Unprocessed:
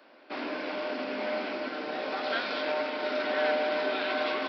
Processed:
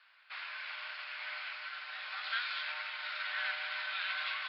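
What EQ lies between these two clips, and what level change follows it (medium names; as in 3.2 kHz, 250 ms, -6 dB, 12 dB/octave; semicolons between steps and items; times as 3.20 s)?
high-pass 1.3 kHz 24 dB/octave; steep low-pass 4.8 kHz 48 dB/octave; -2.0 dB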